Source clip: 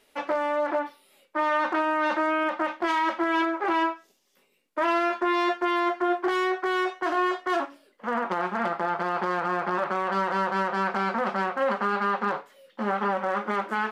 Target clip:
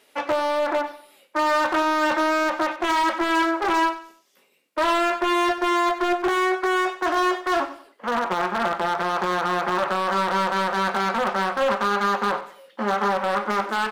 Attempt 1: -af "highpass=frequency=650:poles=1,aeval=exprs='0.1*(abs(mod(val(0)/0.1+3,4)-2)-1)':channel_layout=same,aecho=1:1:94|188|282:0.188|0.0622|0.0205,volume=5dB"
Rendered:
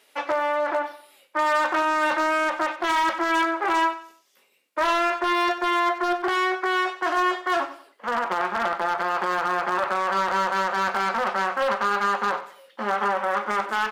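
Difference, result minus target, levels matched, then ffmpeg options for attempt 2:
250 Hz band −4.0 dB
-af "highpass=frequency=230:poles=1,aeval=exprs='0.1*(abs(mod(val(0)/0.1+3,4)-2)-1)':channel_layout=same,aecho=1:1:94|188|282:0.188|0.0622|0.0205,volume=5dB"

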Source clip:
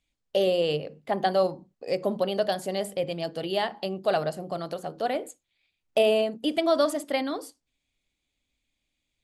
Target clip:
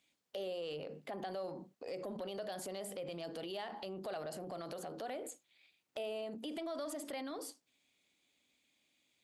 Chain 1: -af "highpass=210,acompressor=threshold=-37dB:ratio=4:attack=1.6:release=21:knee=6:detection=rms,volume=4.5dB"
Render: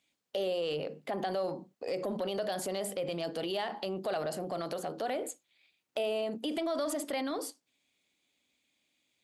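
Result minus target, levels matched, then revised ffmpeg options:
downward compressor: peak gain reduction −8.5 dB
-af "highpass=210,acompressor=threshold=-48.5dB:ratio=4:attack=1.6:release=21:knee=6:detection=rms,volume=4.5dB"

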